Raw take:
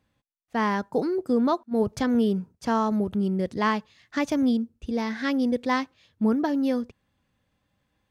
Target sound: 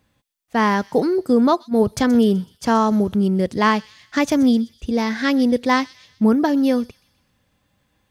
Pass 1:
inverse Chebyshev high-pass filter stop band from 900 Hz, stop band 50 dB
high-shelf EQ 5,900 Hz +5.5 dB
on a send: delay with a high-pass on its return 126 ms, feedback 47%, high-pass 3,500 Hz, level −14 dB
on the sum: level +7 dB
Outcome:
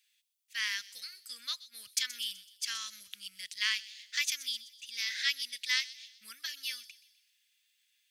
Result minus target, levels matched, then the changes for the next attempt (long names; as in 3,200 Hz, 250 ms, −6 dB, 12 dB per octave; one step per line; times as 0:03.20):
1,000 Hz band −17.0 dB
remove: inverse Chebyshev high-pass filter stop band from 900 Hz, stop band 50 dB